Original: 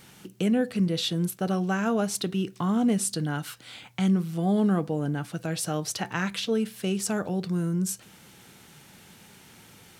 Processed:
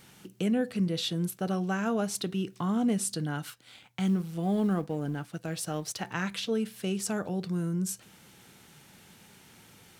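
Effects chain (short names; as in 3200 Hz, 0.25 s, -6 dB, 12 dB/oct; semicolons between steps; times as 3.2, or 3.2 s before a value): 3.5–6.07 G.711 law mismatch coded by A; gain -3.5 dB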